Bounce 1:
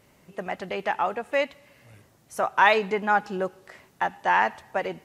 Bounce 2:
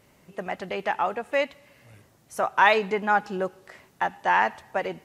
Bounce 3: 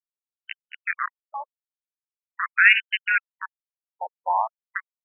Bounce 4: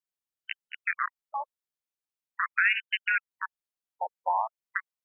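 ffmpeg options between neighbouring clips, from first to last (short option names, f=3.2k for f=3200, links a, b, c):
-af anull
-af "aeval=exprs='val(0)*gte(abs(val(0)),0.119)':c=same,crystalizer=i=8:c=0,afftfilt=real='re*between(b*sr/1024,650*pow(2200/650,0.5+0.5*sin(2*PI*0.43*pts/sr))/1.41,650*pow(2200/650,0.5+0.5*sin(2*PI*0.43*pts/sr))*1.41)':imag='im*between(b*sr/1024,650*pow(2200/650,0.5+0.5*sin(2*PI*0.43*pts/sr))/1.41,650*pow(2200/650,0.5+0.5*sin(2*PI*0.43*pts/sr))*1.41)':win_size=1024:overlap=0.75"
-af "acompressor=threshold=-25dB:ratio=2.5"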